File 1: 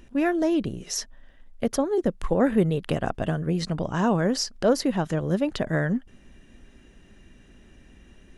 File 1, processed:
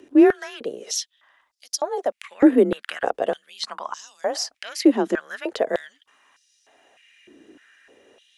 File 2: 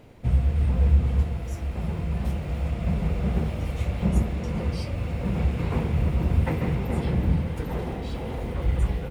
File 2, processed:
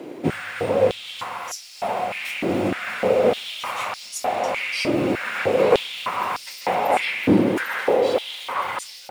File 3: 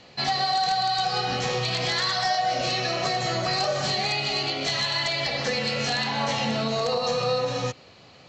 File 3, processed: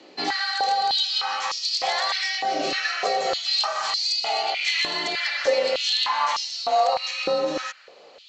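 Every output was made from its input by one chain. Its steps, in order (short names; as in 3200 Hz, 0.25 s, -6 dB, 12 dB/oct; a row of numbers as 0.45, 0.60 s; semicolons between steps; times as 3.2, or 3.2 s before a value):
frequency shift +33 Hz; stepped high-pass 3.3 Hz 330–5000 Hz; match loudness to -23 LUFS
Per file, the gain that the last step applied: +0.5, +11.0, -1.5 dB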